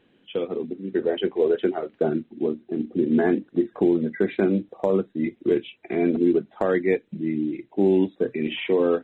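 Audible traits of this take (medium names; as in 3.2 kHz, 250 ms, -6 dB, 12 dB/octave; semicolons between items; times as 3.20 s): noise floor -62 dBFS; spectral tilt -5.0 dB/octave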